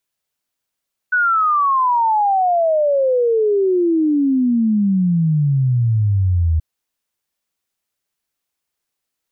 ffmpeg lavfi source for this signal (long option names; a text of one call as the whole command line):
ffmpeg -f lavfi -i "aevalsrc='0.237*clip(min(t,5.48-t)/0.01,0,1)*sin(2*PI*1500*5.48/log(78/1500)*(exp(log(78/1500)*t/5.48)-1))':duration=5.48:sample_rate=44100" out.wav